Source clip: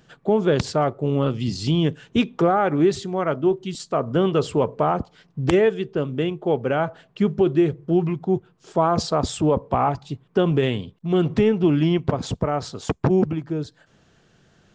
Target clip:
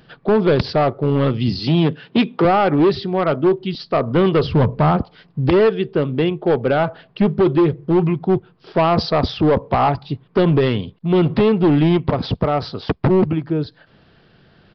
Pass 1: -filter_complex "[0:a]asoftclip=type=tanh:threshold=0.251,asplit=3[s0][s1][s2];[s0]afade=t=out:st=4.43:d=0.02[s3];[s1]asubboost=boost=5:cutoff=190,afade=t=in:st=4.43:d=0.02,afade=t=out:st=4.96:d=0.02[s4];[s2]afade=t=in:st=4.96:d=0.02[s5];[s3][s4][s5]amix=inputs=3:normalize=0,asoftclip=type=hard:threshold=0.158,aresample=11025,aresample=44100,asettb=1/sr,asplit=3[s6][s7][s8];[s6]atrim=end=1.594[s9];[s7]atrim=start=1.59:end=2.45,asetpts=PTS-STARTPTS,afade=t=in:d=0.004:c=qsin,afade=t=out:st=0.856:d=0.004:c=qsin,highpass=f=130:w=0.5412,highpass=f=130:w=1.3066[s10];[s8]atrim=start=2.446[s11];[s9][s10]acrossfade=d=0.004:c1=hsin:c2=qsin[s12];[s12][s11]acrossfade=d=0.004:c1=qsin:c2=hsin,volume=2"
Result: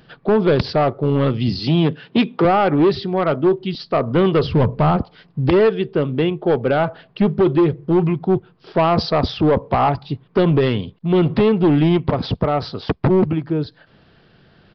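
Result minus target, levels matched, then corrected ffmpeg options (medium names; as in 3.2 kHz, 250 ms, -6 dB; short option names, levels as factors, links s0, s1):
saturation: distortion +10 dB
-filter_complex "[0:a]asoftclip=type=tanh:threshold=0.501,asplit=3[s0][s1][s2];[s0]afade=t=out:st=4.43:d=0.02[s3];[s1]asubboost=boost=5:cutoff=190,afade=t=in:st=4.43:d=0.02,afade=t=out:st=4.96:d=0.02[s4];[s2]afade=t=in:st=4.96:d=0.02[s5];[s3][s4][s5]amix=inputs=3:normalize=0,asoftclip=type=hard:threshold=0.158,aresample=11025,aresample=44100,asettb=1/sr,asplit=3[s6][s7][s8];[s6]atrim=end=1.594[s9];[s7]atrim=start=1.59:end=2.45,asetpts=PTS-STARTPTS,afade=t=in:d=0.004:c=qsin,afade=t=out:st=0.856:d=0.004:c=qsin,highpass=f=130:w=0.5412,highpass=f=130:w=1.3066[s10];[s8]atrim=start=2.446[s11];[s9][s10]acrossfade=d=0.004:c1=hsin:c2=qsin[s12];[s12][s11]acrossfade=d=0.004:c1=qsin:c2=hsin,volume=2"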